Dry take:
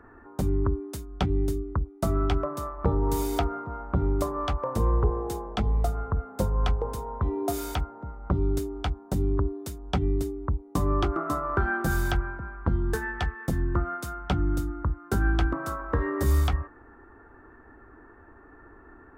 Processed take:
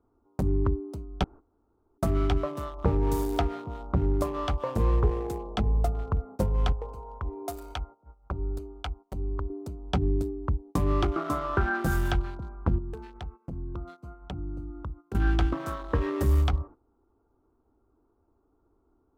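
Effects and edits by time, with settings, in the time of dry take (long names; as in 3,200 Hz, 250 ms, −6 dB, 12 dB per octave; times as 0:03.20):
0:01.24–0:01.98: fill with room tone
0:06.72–0:09.50: parametric band 180 Hz −13 dB 2.9 octaves
0:12.78–0:15.15: downward compressor 2 to 1, threshold −39 dBFS
whole clip: adaptive Wiener filter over 25 samples; noise gate −42 dBFS, range −16 dB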